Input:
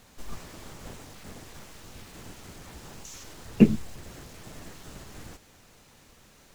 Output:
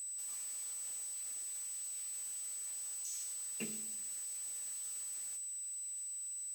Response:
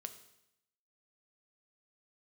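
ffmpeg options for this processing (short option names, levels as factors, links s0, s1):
-filter_complex "[0:a]aeval=exprs='val(0)+0.0112*sin(2*PI*8000*n/s)':c=same,aderivative[s0];[1:a]atrim=start_sample=2205[s1];[s0][s1]afir=irnorm=-1:irlink=0,volume=1.41"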